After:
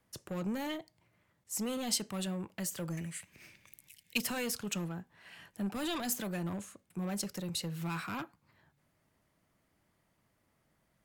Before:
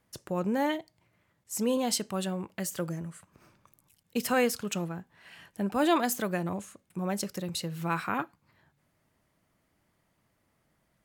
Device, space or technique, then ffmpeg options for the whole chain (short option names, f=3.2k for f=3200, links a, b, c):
one-band saturation: -filter_complex "[0:a]asettb=1/sr,asplit=3[a][b][c];[a]atrim=end=2.974[d];[b]atrim=start=2.97:end=4.18,asetpts=PTS-STARTPTS,afade=t=in:d=0.004:c=qsin,afade=t=out:st=1.206:d=0.004:c=qsin,highshelf=f=1.6k:t=q:w=3:g=9.5[e];[c]atrim=start=4.176[f];[d][e]acrossfade=d=0.004:c1=hsin:c2=qsin[g];[g][f]acrossfade=d=0.004:c1=qsin:c2=hsin,acrossover=split=200|2400[h][i][j];[i]asoftclip=type=tanh:threshold=-35.5dB[k];[h][k][j]amix=inputs=3:normalize=0,volume=-2dB"